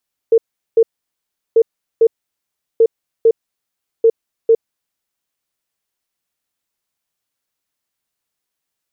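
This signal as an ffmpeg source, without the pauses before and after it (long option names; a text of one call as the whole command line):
ffmpeg -f lavfi -i "aevalsrc='0.501*sin(2*PI*454*t)*clip(min(mod(mod(t,1.24),0.45),0.06-mod(mod(t,1.24),0.45))/0.005,0,1)*lt(mod(t,1.24),0.9)':duration=4.96:sample_rate=44100" out.wav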